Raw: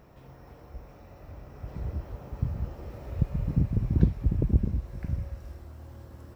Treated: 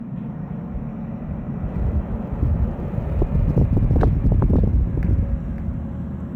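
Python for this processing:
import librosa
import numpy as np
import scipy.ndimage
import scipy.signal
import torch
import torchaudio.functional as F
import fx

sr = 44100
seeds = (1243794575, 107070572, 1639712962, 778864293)

p1 = fx.wiener(x, sr, points=9)
p2 = p1 + fx.echo_single(p1, sr, ms=553, db=-9.5, dry=0)
p3 = fx.dmg_noise_band(p2, sr, seeds[0], low_hz=120.0, high_hz=240.0, level_db=-42.0)
p4 = fx.fold_sine(p3, sr, drive_db=14, ceiling_db=-5.0)
y = F.gain(torch.from_numpy(p4), -6.0).numpy()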